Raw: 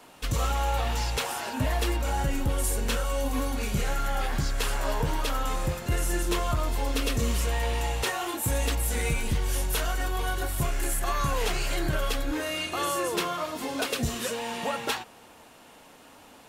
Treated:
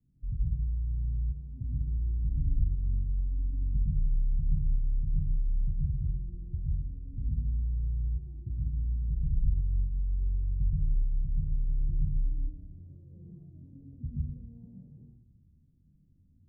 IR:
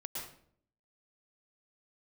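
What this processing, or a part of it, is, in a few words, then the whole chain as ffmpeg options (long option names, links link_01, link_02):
club heard from the street: -filter_complex "[0:a]alimiter=limit=-22dB:level=0:latency=1,lowpass=frequency=150:width=0.5412,lowpass=frequency=150:width=1.3066[link_01];[1:a]atrim=start_sample=2205[link_02];[link_01][link_02]afir=irnorm=-1:irlink=0,volume=3dB"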